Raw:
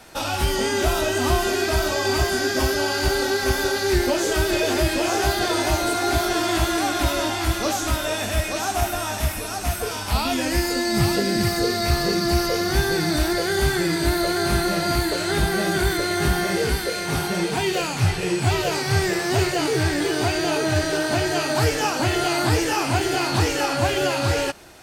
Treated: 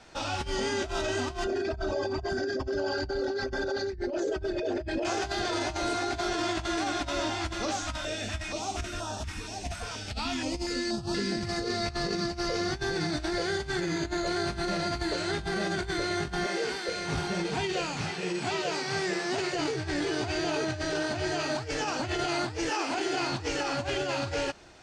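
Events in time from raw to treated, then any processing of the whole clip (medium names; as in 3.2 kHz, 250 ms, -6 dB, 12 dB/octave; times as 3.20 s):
1.44–5.05 s: resonances exaggerated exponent 2
7.81–11.32 s: step-sequenced notch 4.2 Hz 390–2100 Hz
13.81–14.27 s: careless resampling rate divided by 4×, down filtered, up hold
16.46–16.88 s: high-pass 320 Hz
18.01–19.53 s: Chebyshev high-pass 180 Hz, order 3
22.69–23.20 s: high-pass 330 Hz -> 150 Hz 24 dB/octave
whole clip: low-pass 7.2 kHz 24 dB/octave; bass shelf 72 Hz +3 dB; compressor with a negative ratio -22 dBFS, ratio -0.5; trim -8 dB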